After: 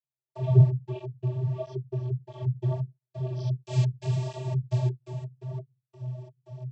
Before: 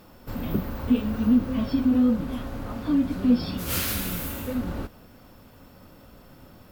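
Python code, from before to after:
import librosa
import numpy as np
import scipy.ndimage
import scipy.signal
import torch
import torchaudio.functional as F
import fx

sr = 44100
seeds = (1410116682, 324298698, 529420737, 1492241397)

y = fx.peak_eq(x, sr, hz=2200.0, db=-3.5, octaves=1.2)
y = fx.fixed_phaser(y, sr, hz=350.0, stages=6)
y = fx.notch_comb(y, sr, f0_hz=750.0)
y = fx.echo_multitap(y, sr, ms=(73, 234, 311, 859), db=(-18.5, -17.0, -10.0, -8.0))
y = fx.rider(y, sr, range_db=4, speed_s=0.5)
y = fx.step_gate(y, sr, bpm=86, pattern='..xx.x.xxx.x.x.x', floor_db=-60.0, edge_ms=4.5)
y = fx.vocoder(y, sr, bands=32, carrier='square', carrier_hz=127.0)
y = fx.tilt_shelf(y, sr, db=5.0, hz=680.0)
y = fx.flanger_cancel(y, sr, hz=1.5, depth_ms=4.8)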